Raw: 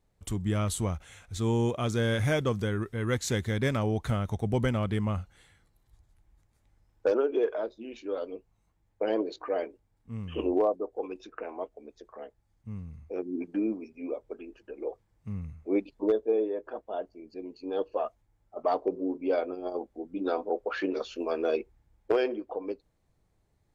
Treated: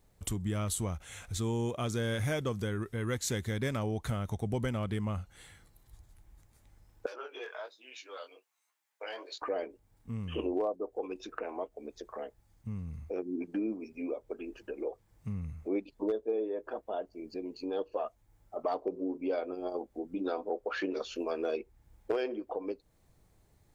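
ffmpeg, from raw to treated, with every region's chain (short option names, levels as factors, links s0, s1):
-filter_complex "[0:a]asettb=1/sr,asplit=3[s0][s1][s2];[s0]atrim=end=7.064[s3];[s1]atrim=start=7.06:end=9.42,asetpts=PTS-STARTPTS,afade=t=in:d=0.004:c=qsin,afade=t=out:st=2.356:d=0.004:c=qsin,highpass=1300,flanger=delay=15:depth=7.6:speed=1.2[s4];[s2]atrim=start=9.416[s5];[s3][s4]acrossfade=d=0.004:c1=hsin:c2=qsin[s6];[s6][s5]acrossfade=d=0.004:c1=qsin:c2=hsin,highshelf=f=7700:g=8,acompressor=threshold=0.00631:ratio=2,volume=1.88"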